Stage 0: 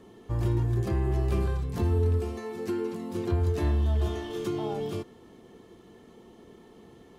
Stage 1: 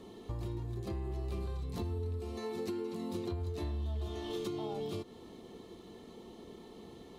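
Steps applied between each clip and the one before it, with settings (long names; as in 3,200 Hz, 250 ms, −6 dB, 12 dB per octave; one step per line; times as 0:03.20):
downward compressor, threshold −36 dBFS, peak gain reduction 13.5 dB
thirty-one-band graphic EQ 125 Hz −5 dB, 1,600 Hz −8 dB, 4,000 Hz +8 dB
level +1 dB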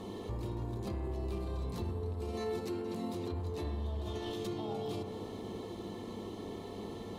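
brickwall limiter −37 dBFS, peak gain reduction 10.5 dB
hum with harmonics 100 Hz, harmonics 11, −55 dBFS −4 dB per octave
bucket-brigade delay 64 ms, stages 1,024, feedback 83%, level −9 dB
level +6 dB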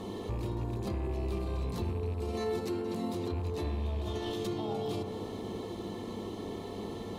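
loose part that buzzes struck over −35 dBFS, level −48 dBFS
level +3.5 dB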